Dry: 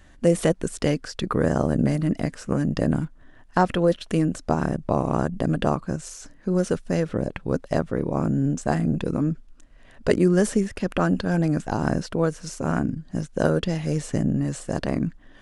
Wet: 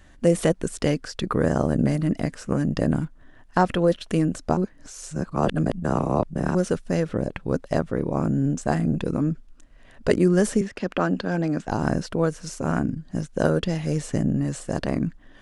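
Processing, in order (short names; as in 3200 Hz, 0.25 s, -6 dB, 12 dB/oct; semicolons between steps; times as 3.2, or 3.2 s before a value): 4.57–6.55 reverse; 10.61–11.68 three-band isolator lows -12 dB, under 170 Hz, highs -16 dB, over 7000 Hz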